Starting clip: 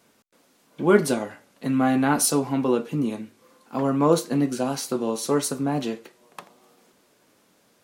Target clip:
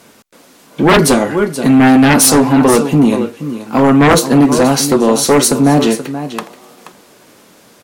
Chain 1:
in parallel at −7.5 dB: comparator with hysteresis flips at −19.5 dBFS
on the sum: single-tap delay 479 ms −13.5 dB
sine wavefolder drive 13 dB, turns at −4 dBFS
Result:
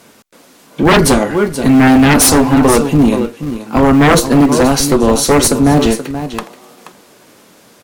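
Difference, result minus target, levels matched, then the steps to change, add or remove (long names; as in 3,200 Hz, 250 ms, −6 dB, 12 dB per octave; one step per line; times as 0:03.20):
comparator with hysteresis: distortion −17 dB
change: comparator with hysteresis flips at −9 dBFS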